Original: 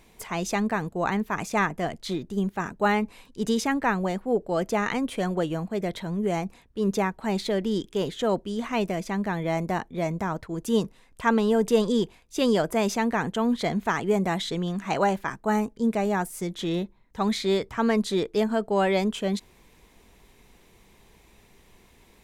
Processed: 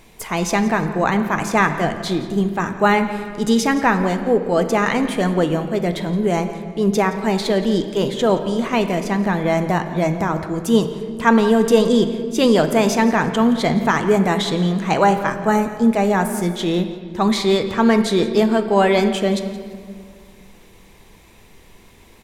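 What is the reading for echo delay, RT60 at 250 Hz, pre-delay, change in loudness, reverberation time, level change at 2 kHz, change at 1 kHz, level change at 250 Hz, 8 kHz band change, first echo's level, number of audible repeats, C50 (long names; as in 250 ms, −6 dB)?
171 ms, 2.5 s, 6 ms, +8.5 dB, 1.9 s, +8.5 dB, +8.5 dB, +8.5 dB, +8.0 dB, −18.5 dB, 2, 9.0 dB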